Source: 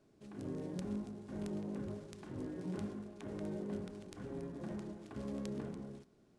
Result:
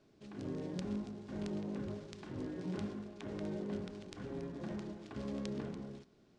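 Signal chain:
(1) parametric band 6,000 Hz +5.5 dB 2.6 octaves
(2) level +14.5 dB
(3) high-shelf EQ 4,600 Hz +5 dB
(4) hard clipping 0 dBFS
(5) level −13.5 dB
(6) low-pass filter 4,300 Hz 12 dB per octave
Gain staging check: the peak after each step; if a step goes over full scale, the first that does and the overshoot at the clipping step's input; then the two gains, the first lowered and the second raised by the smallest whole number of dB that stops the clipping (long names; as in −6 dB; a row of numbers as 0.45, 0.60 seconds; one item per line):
−21.0, −6.5, −4.5, −4.5, −18.0, −21.5 dBFS
no step passes full scale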